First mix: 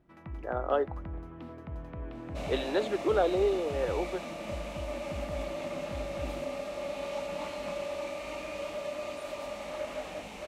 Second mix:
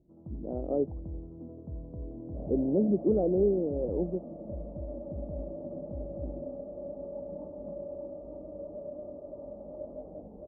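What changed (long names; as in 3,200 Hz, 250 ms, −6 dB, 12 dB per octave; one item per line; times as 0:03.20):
speech: remove high-pass filter 360 Hz 24 dB per octave
first sound: remove high-frequency loss of the air 420 metres
master: add inverse Chebyshev low-pass filter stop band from 1,900 Hz, stop band 60 dB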